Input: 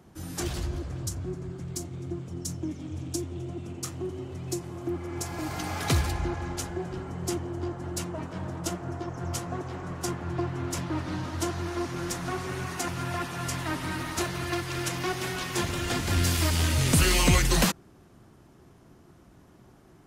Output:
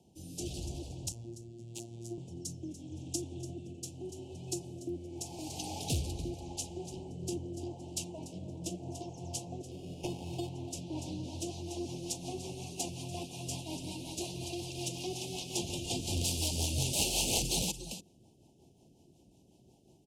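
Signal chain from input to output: 1.12–2.18 s: robot voice 116 Hz; treble shelf 4 kHz +7.5 dB; 9.71–10.49 s: sample-rate reducer 4 kHz, jitter 0%; delay 290 ms -13 dB; integer overflow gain 14.5 dB; low-pass 9.7 kHz 12 dB/octave; rotary cabinet horn 0.85 Hz, later 5.5 Hz, at 10.64 s; elliptic band-stop 850–2700 Hz, stop band 40 dB; bass shelf 74 Hz -8 dB; trim -5 dB

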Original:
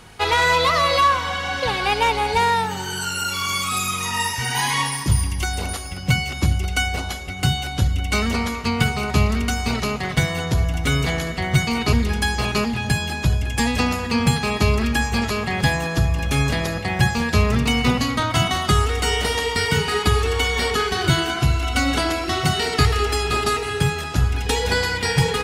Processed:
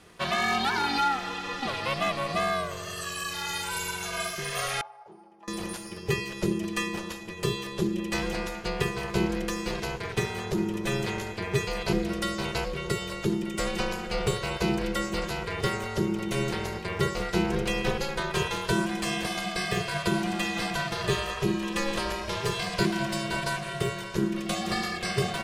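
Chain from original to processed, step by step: ring modulator 270 Hz; 4.81–5.48 s: band-pass filter 840 Hz, Q 8.2; trim -6 dB

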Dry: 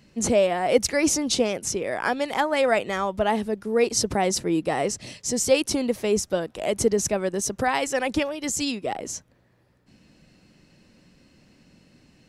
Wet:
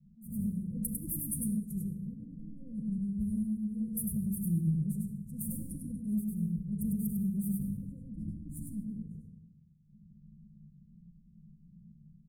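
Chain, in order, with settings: self-modulated delay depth 0.15 ms; in parallel at -10 dB: bit crusher 6-bit; on the sum: Chebyshev band-stop 210–9200 Hz, order 5; hum notches 60/120/180/240 Hz; small resonant body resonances 440/1800 Hz, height 17 dB, ringing for 45 ms; level-controlled noise filter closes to 750 Hz, open at -26.5 dBFS; treble shelf 7.2 kHz -8 dB; delay 100 ms -3.5 dB; reverberation RT60 1.1 s, pre-delay 3 ms, DRR -0.5 dB; compression 10:1, threshold -25 dBFS, peak gain reduction 10 dB; graphic EQ with 31 bands 160 Hz +9 dB, 500 Hz +8 dB, 5 kHz +6 dB, 10 kHz +6 dB; attacks held to a fixed rise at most 110 dB/s; trim -5 dB

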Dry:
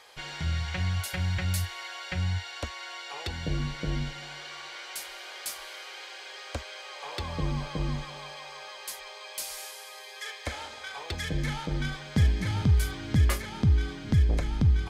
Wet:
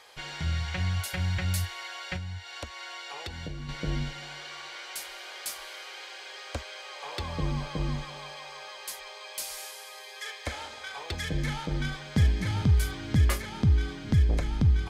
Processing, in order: 2.16–3.69 s: compression 5:1, threshold -35 dBFS, peak gain reduction 10 dB

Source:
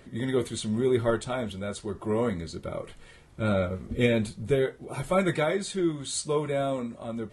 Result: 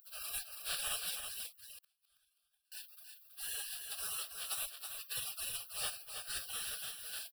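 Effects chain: spectral contrast reduction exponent 0.45; 5.47–6.48 s: de-hum 136.2 Hz, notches 5; spectral gate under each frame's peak -25 dB weak; in parallel at -3 dB: compression 4:1, threshold -56 dBFS, peak gain reduction 20 dB; on the sum: saturation -31 dBFS, distortion -16 dB; static phaser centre 1.4 kHz, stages 8; 1.46–2.72 s: inverted gate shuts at -46 dBFS, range -36 dB; on a send: delay 324 ms -7 dB; on the sum: trim +5 dB

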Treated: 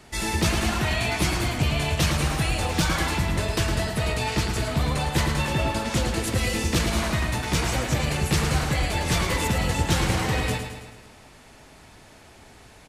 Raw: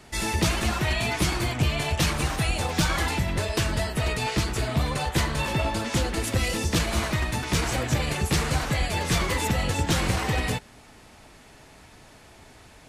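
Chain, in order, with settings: feedback delay 109 ms, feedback 55%, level -7.5 dB

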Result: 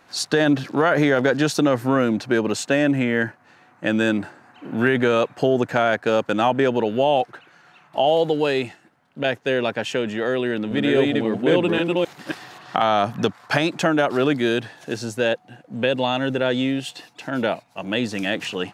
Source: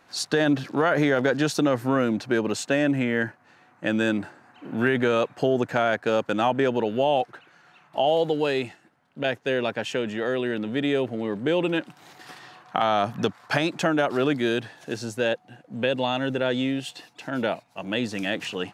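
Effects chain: 10.44–12.76 s: chunks repeated in reverse 268 ms, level -1 dB; trim +3.5 dB

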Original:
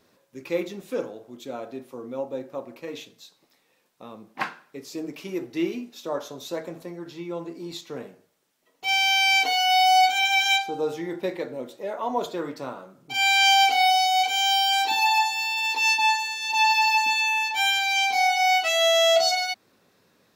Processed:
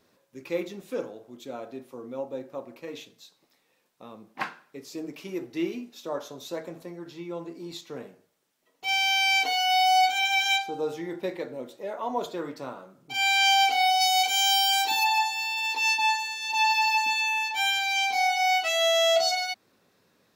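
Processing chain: 14.00–15.03 s: treble shelf 3.8 kHz -> 7.6 kHz +10.5 dB; trim -3 dB

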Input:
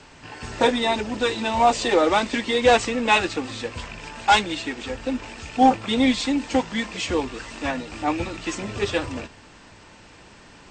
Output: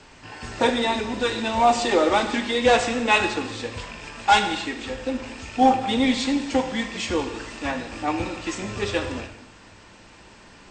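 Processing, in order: gated-style reverb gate 350 ms falling, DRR 5.5 dB; trim -1.5 dB

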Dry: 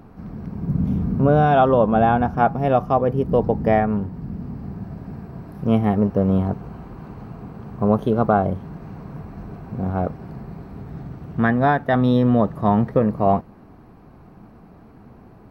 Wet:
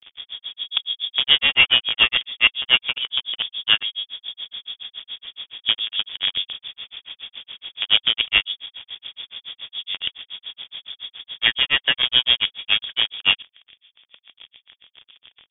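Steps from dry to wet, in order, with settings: peaking EQ 1.6 kHz +3 dB 0.31 oct; in parallel at -6 dB: companded quantiser 2-bit; on the sum: frequency inversion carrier 3.5 kHz; granulator 119 ms, grains 7.1 per s, spray 19 ms, pitch spread up and down by 0 st; trim -4 dB

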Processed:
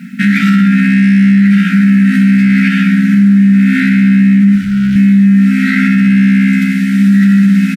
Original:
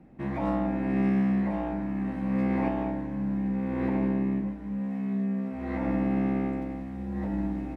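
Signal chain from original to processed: Chebyshev high-pass 180 Hz, order 5; treble shelf 2.5 kHz +8.5 dB; in parallel at -1.5 dB: compression, threshold -33 dBFS, peak gain reduction 11.5 dB; 4.55–4.96 s: on the sum: hard clipper -36 dBFS, distortion -19 dB; brick-wall FIR band-stop 260–1300 Hz; on a send: delay 105 ms -12 dB; on the sum: loudness maximiser +26 dB; trim -1 dB

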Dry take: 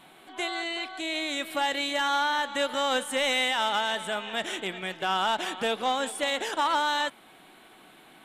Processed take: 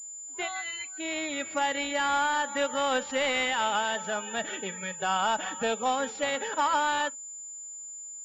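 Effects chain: spectral noise reduction 22 dB; class-D stage that switches slowly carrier 7.1 kHz

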